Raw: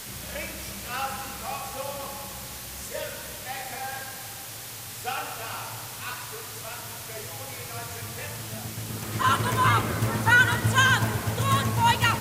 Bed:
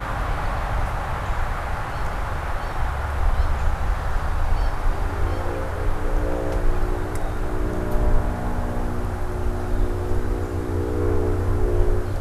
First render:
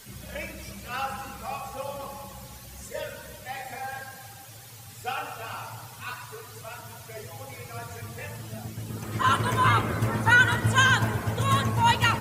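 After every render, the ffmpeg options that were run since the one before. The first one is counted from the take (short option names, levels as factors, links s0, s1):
-af "afftdn=nr=11:nf=-39"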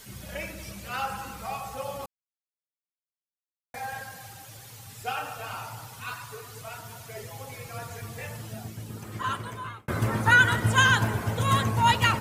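-filter_complex "[0:a]asplit=4[s0][s1][s2][s3];[s0]atrim=end=2.06,asetpts=PTS-STARTPTS,afade=t=out:st=2.056:d=0.004:c=hsin[s4];[s1]atrim=start=2.06:end=3.74,asetpts=PTS-STARTPTS,volume=0[s5];[s2]atrim=start=3.74:end=9.88,asetpts=PTS-STARTPTS,afade=t=in:d=0.004:c=hsin,afade=t=out:st=4.69:d=1.45[s6];[s3]atrim=start=9.88,asetpts=PTS-STARTPTS,afade=t=in:d=0.004:c=hsin[s7];[s4][s5][s6][s7]concat=n=4:v=0:a=1"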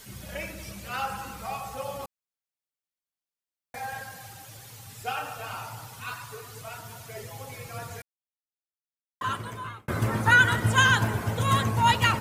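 -filter_complex "[0:a]asplit=3[s0][s1][s2];[s0]atrim=end=8.02,asetpts=PTS-STARTPTS,afade=t=out:st=8.016:d=0.004:c=hsin[s3];[s1]atrim=start=8.02:end=9.21,asetpts=PTS-STARTPTS,volume=0[s4];[s2]atrim=start=9.21,asetpts=PTS-STARTPTS,afade=t=in:d=0.004:c=hsin[s5];[s3][s4][s5]concat=n=3:v=0:a=1"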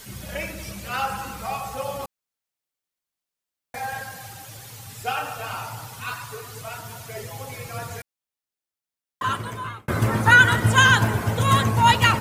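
-af "volume=1.78,alimiter=limit=0.794:level=0:latency=1"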